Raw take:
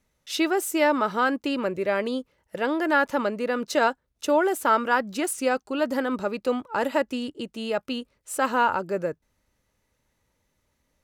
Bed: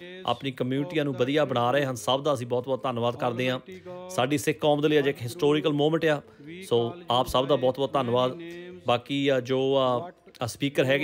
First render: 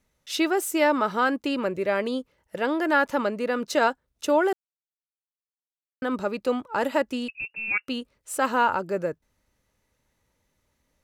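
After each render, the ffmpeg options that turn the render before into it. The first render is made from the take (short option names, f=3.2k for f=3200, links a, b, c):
-filter_complex "[0:a]asettb=1/sr,asplit=3[a][b][c];[a]atrim=end=7.284[d];[b]atrim=start=7.28:end=7.88,asetpts=PTS-STARTPTS,afade=t=in:d=0.004:c=qsin,afade=t=out:st=0.596:d=0.004:c=qsin,lowpass=f=2.5k:t=q:w=0.5098,lowpass=f=2.5k:t=q:w=0.6013,lowpass=f=2.5k:t=q:w=0.9,lowpass=f=2.5k:t=q:w=2.563,afreqshift=-2900[e];[c]atrim=start=7.876[f];[d][e]acrossfade=d=0.004:c1=hsin:c2=qsin[g];[g][f]acrossfade=d=0.004:c1=qsin:c2=hsin,asplit=3[h][i][j];[h]atrim=end=4.53,asetpts=PTS-STARTPTS,afade=t=out:st=4.526:d=0.004:c=hsin[k];[i]atrim=start=4.53:end=6.02,asetpts=PTS-STARTPTS,volume=0[l];[j]atrim=start=6.02,asetpts=PTS-STARTPTS,afade=t=in:d=0.004:c=hsin[m];[k][l][m]concat=n=3:v=0:a=1"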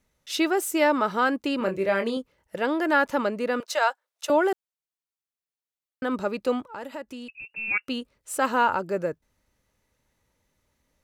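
-filter_complex "[0:a]asettb=1/sr,asplit=3[a][b][c];[a]atrim=end=1.584[d];[b]atrim=start=1.58:end=2.17,asetpts=PTS-STARTPTS,afade=t=in:d=0.004:c=qsin,afade=t=out:st=0.586:d=0.004:c=qsin,asplit=2[e][f];[f]adelay=26,volume=-6.5dB[g];[e][g]amix=inputs=2:normalize=0,atrim=end_sample=26019[h];[c]atrim=start=2.166[i];[d][h]acrossfade=d=0.004:c1=hsin:c2=qsin[j];[j][i]acrossfade=d=0.004:c1=qsin:c2=hsin,asettb=1/sr,asplit=3[k][l][m];[k]atrim=end=3.604[n];[l]atrim=start=3.6:end=4.3,asetpts=PTS-STARTPTS,afade=t=in:d=0.004:c=qsin,afade=t=out:st=0.696:d=0.004:c=qsin,highpass=f=590:w=0.5412,highpass=f=590:w=1.3066[o];[m]atrim=start=4.296[p];[n][o]acrossfade=d=0.004:c1=hsin:c2=qsin[q];[q][p]acrossfade=d=0.004:c1=qsin:c2=hsin,asettb=1/sr,asplit=3[r][s][t];[r]atrim=end=6.694[u];[s]atrim=start=6.69:end=7.53,asetpts=PTS-STARTPTS,afade=t=in:d=0.004:c=qsin,afade=t=out:st=0.836:d=0.004:c=qsin,acompressor=threshold=-42dB:ratio=2:attack=3.2:release=140:knee=1:detection=peak[v];[t]atrim=start=7.526[w];[u][v]acrossfade=d=0.004:c1=hsin:c2=qsin[x];[x][w]acrossfade=d=0.004:c1=qsin:c2=hsin"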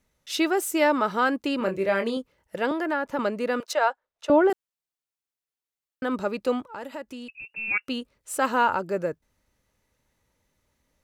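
-filter_complex "[0:a]asettb=1/sr,asplit=3[a][b][c];[a]atrim=end=2.714[d];[b]atrim=start=2.71:end=3.19,asetpts=PTS-STARTPTS,afade=t=in:d=0.004:c=qsin,afade=t=out:st=0.476:d=0.004:c=qsin,acrossover=split=780|2300[e][f][g];[e]acompressor=threshold=-27dB:ratio=4[h];[f]acompressor=threshold=-29dB:ratio=4[i];[g]acompressor=threshold=-49dB:ratio=4[j];[h][i][j]amix=inputs=3:normalize=0[k];[c]atrim=start=3.186[l];[d][k]acrossfade=d=0.004:c1=hsin:c2=qsin[m];[m][l]acrossfade=d=0.004:c1=qsin:c2=hsin,asettb=1/sr,asplit=3[n][o][p];[n]atrim=end=3.734[q];[o]atrim=start=3.73:end=4.5,asetpts=PTS-STARTPTS,afade=t=in:d=0.004:c=qsin,afade=t=out:st=0.766:d=0.004:c=qsin,aemphasis=mode=reproduction:type=riaa[r];[p]atrim=start=4.496[s];[q][r]acrossfade=d=0.004:c1=hsin:c2=qsin[t];[t][s]acrossfade=d=0.004:c1=qsin:c2=hsin"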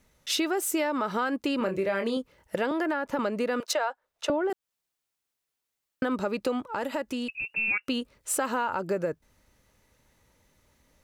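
-filter_complex "[0:a]asplit=2[a][b];[b]alimiter=limit=-20dB:level=0:latency=1,volume=2dB[c];[a][c]amix=inputs=2:normalize=0,acompressor=threshold=-25dB:ratio=6"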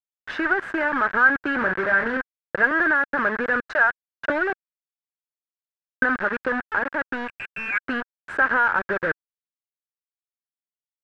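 -af "acrusher=bits=4:mix=0:aa=0.000001,lowpass=f=1.6k:t=q:w=9.9"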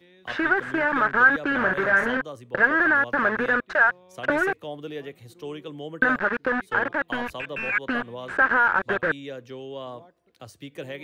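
-filter_complex "[1:a]volume=-13dB[a];[0:a][a]amix=inputs=2:normalize=0"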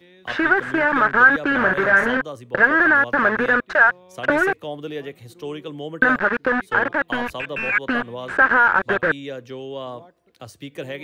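-af "volume=4.5dB,alimiter=limit=-3dB:level=0:latency=1"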